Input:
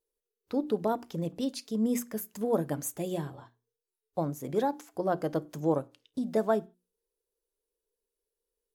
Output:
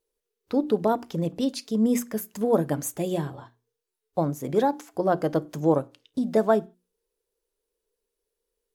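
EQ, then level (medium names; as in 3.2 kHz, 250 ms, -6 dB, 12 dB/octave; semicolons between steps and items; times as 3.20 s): treble shelf 8.4 kHz -4 dB; +6.0 dB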